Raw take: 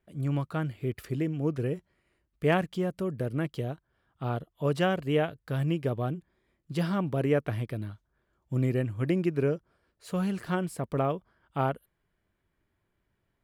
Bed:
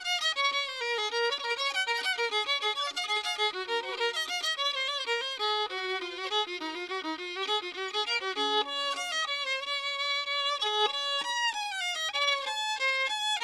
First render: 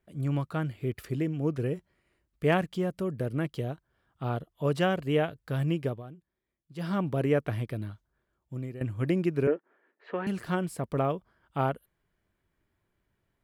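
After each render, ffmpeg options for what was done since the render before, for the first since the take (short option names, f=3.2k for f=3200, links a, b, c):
-filter_complex "[0:a]asettb=1/sr,asplit=3[a][b][c];[a]atrim=end=9.474[d];[b]atrim=start=9.47:end=10.27,asetpts=PTS-STARTPTS,afade=t=in:d=0.004:c=qsin,afade=t=out:st=0.796:d=0.004:c=qsin,highpass=f=260:w=0.5412,highpass=f=260:w=1.3066,equalizer=f=280:t=q:w=4:g=4,equalizer=f=410:t=q:w=4:g=5,equalizer=f=870:t=q:w=4:g=5,equalizer=f=1.8k:t=q:w=4:g=10,lowpass=f=2.8k:w=0.5412,lowpass=f=2.8k:w=1.3066[e];[c]atrim=start=10.266[f];[d][e]acrossfade=d=0.004:c1=hsin:c2=qsin[g];[g][f]acrossfade=d=0.004:c1=qsin:c2=hsin,asplit=4[h][i][j][k];[h]atrim=end=6.03,asetpts=PTS-STARTPTS,afade=t=out:st=5.84:d=0.19:silence=0.199526[l];[i]atrim=start=6.03:end=6.75,asetpts=PTS-STARTPTS,volume=-14dB[m];[j]atrim=start=6.75:end=8.81,asetpts=PTS-STARTPTS,afade=t=in:d=0.19:silence=0.199526,afade=t=out:st=1.15:d=0.91:silence=0.16788[n];[k]atrim=start=8.81,asetpts=PTS-STARTPTS,afade=t=in:d=0.004:c=hsin:silence=0.16788[o];[l][m][n][o]concat=n=4:v=0:a=1"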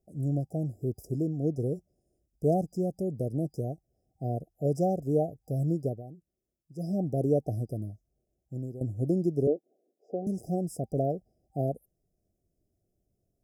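-af "afftfilt=real='re*(1-between(b*sr/4096,780,4900))':imag='im*(1-between(b*sr/4096,780,4900))':win_size=4096:overlap=0.75"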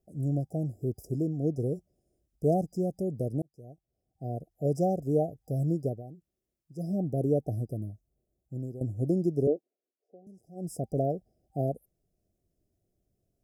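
-filter_complex "[0:a]asettb=1/sr,asplit=3[a][b][c];[a]atrim=end=6.824[d];[b]atrim=start=6.82:end=8.6,asetpts=PTS-STARTPTS,afade=t=in:d=0.004:c=qsin,afade=t=out:st=1.776:d=0.004:c=qsin,equalizer=f=2.6k:t=o:w=2.3:g=-10[e];[c]atrim=start=8.596[f];[d][e]acrossfade=d=0.004:c1=hsin:c2=qsin[g];[g][f]acrossfade=d=0.004:c1=qsin:c2=hsin,asplit=4[h][i][j][k];[h]atrim=end=3.42,asetpts=PTS-STARTPTS,afade=t=out:st=3.416:d=0.004:c=hsin[l];[i]atrim=start=3.42:end=9.69,asetpts=PTS-STARTPTS,afade=t=in:d=1.3,afade=t=out:st=6.13:d=0.14:silence=0.1[m];[j]atrim=start=9.69:end=10.55,asetpts=PTS-STARTPTS,volume=-20dB[n];[k]atrim=start=10.55,asetpts=PTS-STARTPTS,afade=t=in:d=0.14:silence=0.1[o];[l][m][n][o]concat=n=4:v=0:a=1"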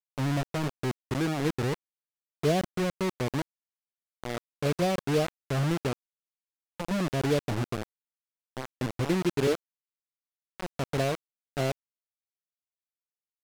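-af "acrusher=bits=4:mix=0:aa=0.000001,adynamicsmooth=sensitivity=6.5:basefreq=3.5k"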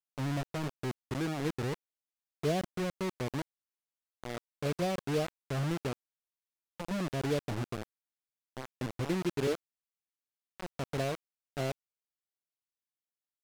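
-af "volume=-5.5dB"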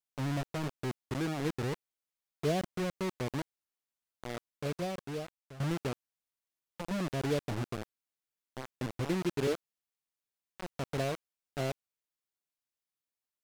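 -filter_complex "[0:a]asplit=2[a][b];[a]atrim=end=5.6,asetpts=PTS-STARTPTS,afade=t=out:st=4.29:d=1.31:silence=0.133352[c];[b]atrim=start=5.6,asetpts=PTS-STARTPTS,afade=t=in:d=0.004:c=hsin:silence=0.133352[d];[c][d]concat=n=2:v=0:a=1"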